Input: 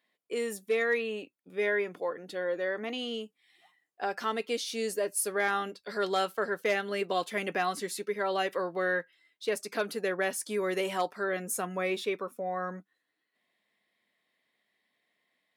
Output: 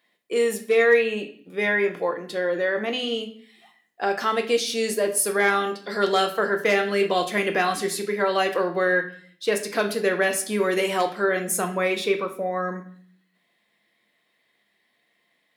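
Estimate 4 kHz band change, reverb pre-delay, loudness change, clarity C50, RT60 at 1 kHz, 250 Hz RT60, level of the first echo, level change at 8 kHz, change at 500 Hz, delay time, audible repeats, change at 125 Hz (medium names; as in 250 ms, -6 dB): +9.0 dB, 6 ms, +8.5 dB, 11.0 dB, 0.50 s, 0.75 s, no echo, +8.5 dB, +8.5 dB, no echo, no echo, +9.0 dB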